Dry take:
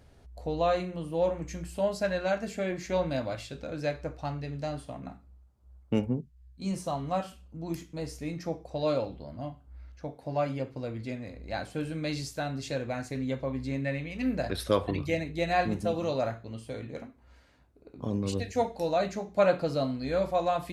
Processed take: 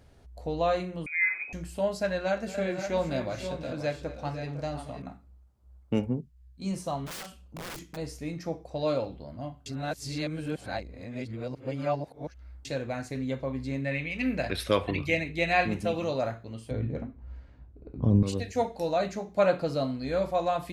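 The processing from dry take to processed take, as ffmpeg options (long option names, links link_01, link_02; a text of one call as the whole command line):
ffmpeg -i in.wav -filter_complex "[0:a]asettb=1/sr,asplit=3[link_01][link_02][link_03];[link_01]atrim=end=1.064[link_04];[link_02]atrim=start=1.06:end=1.53,asetpts=PTS-STARTPTS,afade=type=in:duration=0.004:curve=qsin,afade=type=out:start_time=0.466:duration=0.004:curve=qsin,lowpass=frequency=2200:width_type=q:width=0.5098,lowpass=frequency=2200:width_type=q:width=0.6013,lowpass=frequency=2200:width_type=q:width=0.9,lowpass=frequency=2200:width_type=q:width=2.563,afreqshift=-2600[link_05];[link_03]atrim=start=1.526[link_06];[link_04][link_05]acrossfade=duration=0.004:curve1=hsin:curve2=qsin[link_07];[link_07][link_06]acrossfade=duration=0.004:curve1=qsin:curve2=hsin,asettb=1/sr,asplit=3[link_08][link_09][link_10];[link_08]atrim=end=2.044[link_11];[link_09]atrim=start=2.04:end=5.02,asetpts=PTS-STARTPTS,afade=type=in:duration=0.004:curve=qsin,afade=type=out:start_time=2.976:duration=0.004:curve=qsin,aecho=1:1:229|502|534:0.133|0.224|0.335,atrim=end_sample=131418[link_12];[link_10]atrim=start=5.016[link_13];[link_11][link_12]acrossfade=duration=0.004:curve1=hsin:curve2=qsin[link_14];[link_14][link_13]acrossfade=duration=0.004:curve1=qsin:curve2=hsin,asplit=3[link_15][link_16][link_17];[link_15]afade=type=out:start_time=7.06:duration=0.02[link_18];[link_16]aeval=exprs='(mod(53.1*val(0)+1,2)-1)/53.1':channel_layout=same,afade=type=in:start_time=7.06:duration=0.02,afade=type=out:start_time=7.95:duration=0.02[link_19];[link_17]afade=type=in:start_time=7.95:duration=0.02[link_20];[link_18][link_19][link_20]amix=inputs=3:normalize=0,asettb=1/sr,asplit=3[link_21][link_22][link_23];[link_21]atrim=end=13.914[link_24];[link_22]atrim=start=13.91:end=16.04,asetpts=PTS-STARTPTS,afade=type=in:duration=0.004:curve=qsin,afade=type=out:start_time=2.126:duration=0.004:curve=qsin,equalizer=frequency=2400:width_type=o:width=0.84:gain=9.5[link_25];[link_23]atrim=start=16.036[link_26];[link_24][link_25]acrossfade=duration=0.004:curve1=hsin:curve2=qsin[link_27];[link_27][link_26]acrossfade=duration=0.004:curve1=qsin:curve2=hsin,asettb=1/sr,asplit=3[link_28][link_29][link_30];[link_28]atrim=end=16.714[link_31];[link_29]atrim=start=16.71:end=18.23,asetpts=PTS-STARTPTS,afade=type=in:duration=0.004:curve=qsin,afade=type=out:start_time=1.516:duration=0.004:curve=qsin,aemphasis=mode=reproduction:type=riaa[link_32];[link_30]atrim=start=18.226[link_33];[link_31][link_32]acrossfade=duration=0.004:curve1=hsin:curve2=qsin[link_34];[link_34][link_33]acrossfade=duration=0.004:curve1=qsin:curve2=hsin,asplit=3[link_35][link_36][link_37];[link_35]atrim=end=9.662[link_38];[link_36]atrim=start=9.658:end=12.652,asetpts=PTS-STARTPTS,areverse[link_39];[link_37]atrim=start=12.648[link_40];[link_38][link_39]acrossfade=duration=0.004:curve1=hsin:curve2=hsin[link_41];[link_41][link_40]acrossfade=duration=0.004:curve1=hsin:curve2=hsin" out.wav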